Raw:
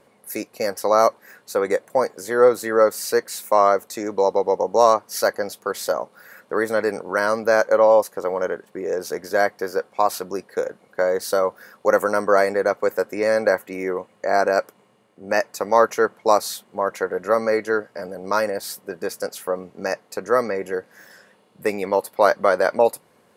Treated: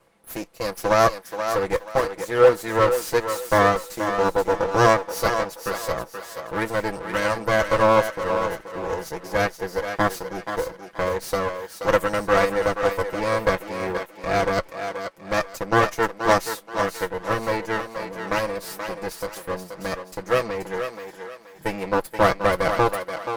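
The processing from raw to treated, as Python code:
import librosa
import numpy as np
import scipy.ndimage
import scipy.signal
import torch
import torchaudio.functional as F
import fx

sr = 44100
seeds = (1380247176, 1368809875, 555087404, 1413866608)

y = fx.lower_of_two(x, sr, delay_ms=6.0)
y = fx.echo_thinned(y, sr, ms=479, feedback_pct=35, hz=320.0, wet_db=-6.0)
y = fx.cheby_harmonics(y, sr, harmonics=(7,), levels_db=(-28,), full_scale_db=-2.0)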